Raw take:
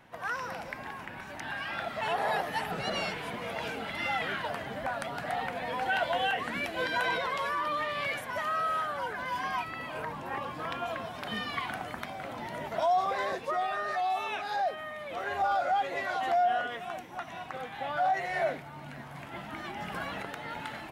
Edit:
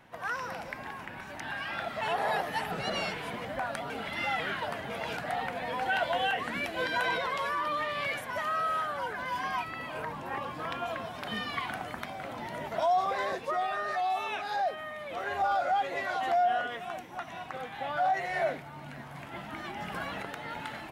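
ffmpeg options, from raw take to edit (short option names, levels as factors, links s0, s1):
-filter_complex "[0:a]asplit=5[s0][s1][s2][s3][s4];[s0]atrim=end=3.452[s5];[s1]atrim=start=4.718:end=5.172[s6];[s2]atrim=start=3.718:end=4.722[s7];[s3]atrim=start=3.448:end=3.722[s8];[s4]atrim=start=5.168[s9];[s5][s6]acrossfade=d=0.004:c1=hsin:c2=hsin[s10];[s10][s7]acrossfade=d=0.004:c1=hsin:c2=hsin[s11];[s11][s8]acrossfade=d=0.004:c1=hsin:c2=hsin[s12];[s12][s9]acrossfade=d=0.004:c1=hsin:c2=hsin"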